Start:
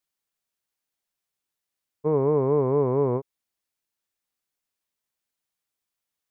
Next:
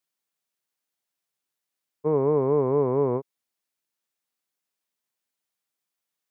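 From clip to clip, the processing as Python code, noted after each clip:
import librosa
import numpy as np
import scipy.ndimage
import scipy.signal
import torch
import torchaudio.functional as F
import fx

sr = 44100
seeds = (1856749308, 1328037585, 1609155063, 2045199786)

y = scipy.signal.sosfilt(scipy.signal.butter(2, 130.0, 'highpass', fs=sr, output='sos'), x)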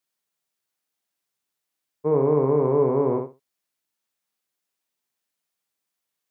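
y = fx.echo_feedback(x, sr, ms=60, feedback_pct=20, wet_db=-5.0)
y = y * 10.0 ** (1.0 / 20.0)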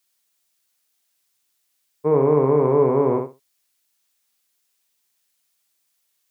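y = fx.high_shelf(x, sr, hz=2000.0, db=10.5)
y = y * 10.0 ** (2.5 / 20.0)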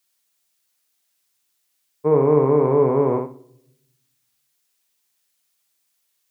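y = fx.room_shoebox(x, sr, seeds[0], volume_m3=2000.0, walls='furnished', distance_m=0.48)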